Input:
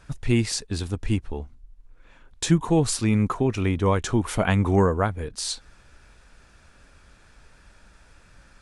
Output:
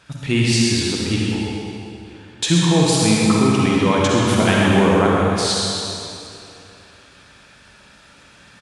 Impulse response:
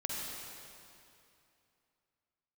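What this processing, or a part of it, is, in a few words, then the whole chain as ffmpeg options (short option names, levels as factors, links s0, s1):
PA in a hall: -filter_complex "[0:a]highpass=120,equalizer=f=3400:t=o:w=1.1:g=7.5,aecho=1:1:127:0.398[s0];[1:a]atrim=start_sample=2205[s1];[s0][s1]afir=irnorm=-1:irlink=0,volume=1.5"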